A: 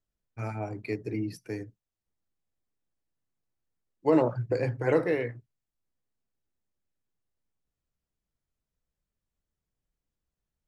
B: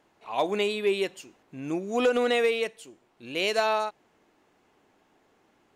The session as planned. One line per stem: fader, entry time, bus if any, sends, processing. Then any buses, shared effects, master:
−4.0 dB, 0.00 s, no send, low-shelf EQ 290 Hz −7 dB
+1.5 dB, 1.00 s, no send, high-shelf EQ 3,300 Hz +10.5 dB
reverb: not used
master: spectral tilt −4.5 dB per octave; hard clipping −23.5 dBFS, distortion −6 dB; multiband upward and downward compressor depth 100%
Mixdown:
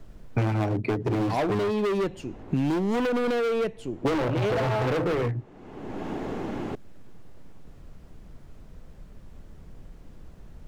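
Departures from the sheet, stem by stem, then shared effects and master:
stem A −4.0 dB → +6.0 dB
stem B: missing high-shelf EQ 3,300 Hz +10.5 dB

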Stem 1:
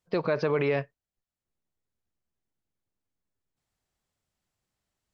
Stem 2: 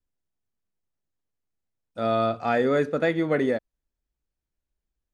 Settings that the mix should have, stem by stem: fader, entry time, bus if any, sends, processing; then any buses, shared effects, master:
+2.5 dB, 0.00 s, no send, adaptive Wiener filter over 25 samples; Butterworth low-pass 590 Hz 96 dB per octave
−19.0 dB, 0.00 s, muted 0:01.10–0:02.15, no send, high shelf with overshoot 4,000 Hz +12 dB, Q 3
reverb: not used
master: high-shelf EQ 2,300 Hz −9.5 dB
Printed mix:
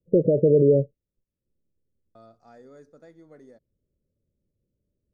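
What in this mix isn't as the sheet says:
stem 1 +2.5 dB → +10.0 dB
stem 2 −19.0 dB → −26.0 dB

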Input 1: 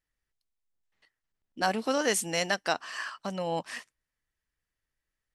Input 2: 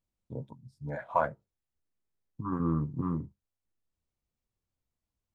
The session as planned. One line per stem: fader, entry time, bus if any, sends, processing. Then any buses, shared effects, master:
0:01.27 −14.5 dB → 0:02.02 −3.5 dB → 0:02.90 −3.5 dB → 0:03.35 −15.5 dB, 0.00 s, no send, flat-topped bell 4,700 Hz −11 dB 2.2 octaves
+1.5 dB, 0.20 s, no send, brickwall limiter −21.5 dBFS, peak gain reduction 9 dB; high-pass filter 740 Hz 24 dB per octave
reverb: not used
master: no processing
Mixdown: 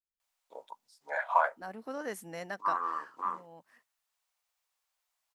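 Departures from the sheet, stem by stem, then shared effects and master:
stem 1 −14.5 dB → −21.0 dB
stem 2 +1.5 dB → +10.5 dB

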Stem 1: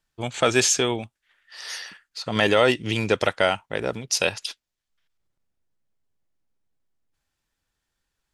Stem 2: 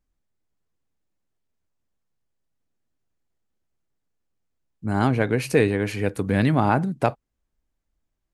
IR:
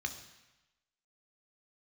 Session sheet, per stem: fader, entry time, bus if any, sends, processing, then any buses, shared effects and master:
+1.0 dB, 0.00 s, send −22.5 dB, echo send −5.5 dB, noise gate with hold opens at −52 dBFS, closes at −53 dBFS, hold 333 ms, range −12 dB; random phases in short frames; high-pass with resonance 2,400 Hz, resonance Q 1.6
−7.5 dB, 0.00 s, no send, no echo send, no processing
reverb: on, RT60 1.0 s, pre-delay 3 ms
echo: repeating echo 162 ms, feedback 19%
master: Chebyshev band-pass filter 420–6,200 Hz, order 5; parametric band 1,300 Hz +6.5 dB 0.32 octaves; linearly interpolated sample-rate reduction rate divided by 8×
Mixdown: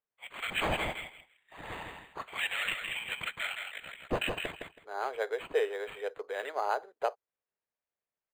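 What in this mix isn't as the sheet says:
stem 1 +1.0 dB → −6.0 dB
master: missing parametric band 1,300 Hz +6.5 dB 0.32 octaves

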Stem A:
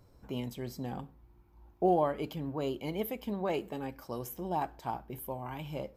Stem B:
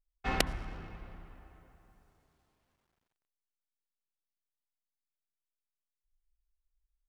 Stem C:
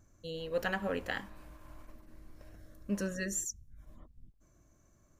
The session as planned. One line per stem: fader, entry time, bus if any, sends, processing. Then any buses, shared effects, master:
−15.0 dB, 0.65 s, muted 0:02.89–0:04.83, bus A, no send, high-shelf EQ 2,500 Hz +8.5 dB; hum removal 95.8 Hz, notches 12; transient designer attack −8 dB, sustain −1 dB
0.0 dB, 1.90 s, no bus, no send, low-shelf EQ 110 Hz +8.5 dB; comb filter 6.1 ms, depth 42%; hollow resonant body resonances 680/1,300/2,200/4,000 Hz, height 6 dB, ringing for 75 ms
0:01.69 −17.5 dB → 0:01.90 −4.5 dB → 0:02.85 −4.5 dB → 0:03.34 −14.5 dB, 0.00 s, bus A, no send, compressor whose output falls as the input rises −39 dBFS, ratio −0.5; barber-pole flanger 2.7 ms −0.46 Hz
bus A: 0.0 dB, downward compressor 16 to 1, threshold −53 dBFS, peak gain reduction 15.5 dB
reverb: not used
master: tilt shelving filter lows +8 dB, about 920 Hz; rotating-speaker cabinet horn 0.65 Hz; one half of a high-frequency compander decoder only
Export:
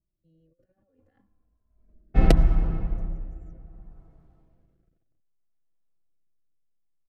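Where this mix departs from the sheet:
stem A: muted
stem B 0.0 dB → +6.0 dB
stem C −17.5 dB → −24.5 dB

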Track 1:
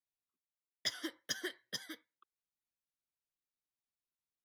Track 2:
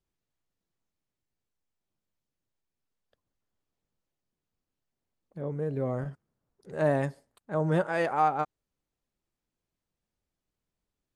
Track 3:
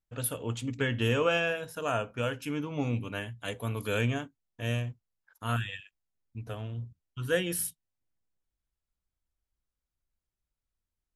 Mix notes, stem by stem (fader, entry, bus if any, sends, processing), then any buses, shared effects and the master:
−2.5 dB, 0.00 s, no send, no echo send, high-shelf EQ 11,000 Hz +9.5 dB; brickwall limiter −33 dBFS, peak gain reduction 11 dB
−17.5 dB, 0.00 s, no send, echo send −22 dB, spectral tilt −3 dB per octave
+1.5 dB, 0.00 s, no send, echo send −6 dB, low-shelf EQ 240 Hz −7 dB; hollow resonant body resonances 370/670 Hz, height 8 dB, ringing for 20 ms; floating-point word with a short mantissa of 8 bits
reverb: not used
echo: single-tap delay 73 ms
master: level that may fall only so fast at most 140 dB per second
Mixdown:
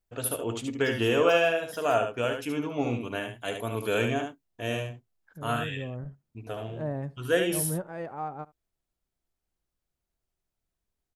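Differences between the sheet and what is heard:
stem 2 −17.5 dB → −11.5 dB
master: missing level that may fall only so fast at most 140 dB per second

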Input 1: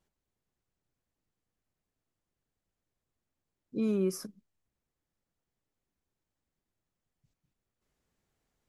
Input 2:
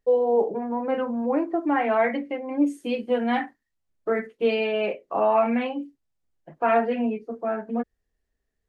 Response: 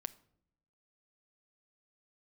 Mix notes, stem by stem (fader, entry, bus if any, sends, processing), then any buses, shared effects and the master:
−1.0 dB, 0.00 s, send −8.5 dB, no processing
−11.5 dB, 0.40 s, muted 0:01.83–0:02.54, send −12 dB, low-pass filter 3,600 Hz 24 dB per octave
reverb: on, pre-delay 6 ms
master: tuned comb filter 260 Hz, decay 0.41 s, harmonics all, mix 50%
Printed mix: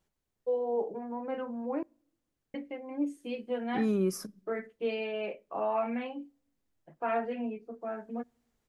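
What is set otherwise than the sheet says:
stem 2: missing low-pass filter 3,600 Hz 24 dB per octave
master: missing tuned comb filter 260 Hz, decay 0.41 s, harmonics all, mix 50%

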